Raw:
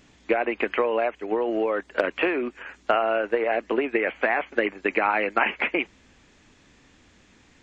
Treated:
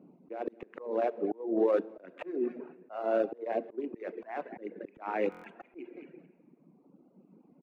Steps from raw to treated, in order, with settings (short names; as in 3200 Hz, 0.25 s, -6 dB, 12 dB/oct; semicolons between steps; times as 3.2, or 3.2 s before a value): Wiener smoothing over 25 samples; elliptic high-pass 160 Hz, stop band 40 dB; tilt shelf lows +7.5 dB, about 1100 Hz; notch 3100 Hz, Q 16; feedback echo 0.223 s, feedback 23%, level -17 dB; on a send at -9.5 dB: reverb RT60 1.3 s, pre-delay 5 ms; on the sum: auto swell 0.443 s; reverb removal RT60 1.5 s; stuck buffer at 5.3, samples 1024, times 5; mismatched tape noise reduction decoder only; gain -2 dB